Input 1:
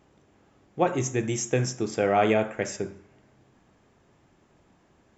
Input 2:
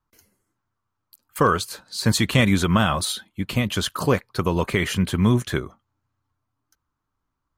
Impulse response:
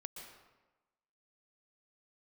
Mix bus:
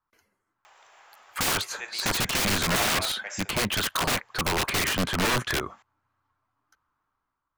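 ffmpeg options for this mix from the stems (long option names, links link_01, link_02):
-filter_complex "[0:a]highpass=frequency=800:width=0.5412,highpass=frequency=800:width=1.3066,acompressor=mode=upward:threshold=-51dB:ratio=2.5,asoftclip=type=tanh:threshold=-19dB,adelay=650,volume=-1.5dB[link_01];[1:a]equalizer=frequency=1300:width=0.38:gain=13.5,aeval=exprs='(mod(4.22*val(0)+1,2)-1)/4.22':channel_layout=same,volume=-13.5dB,asplit=2[link_02][link_03];[link_03]apad=whole_len=256785[link_04];[link_01][link_04]sidechaincompress=threshold=-43dB:ratio=6:attack=5.4:release=365[link_05];[link_05][link_02]amix=inputs=2:normalize=0,dynaudnorm=framelen=140:gausssize=9:maxgain=8dB,highshelf=frequency=5900:gain=-5"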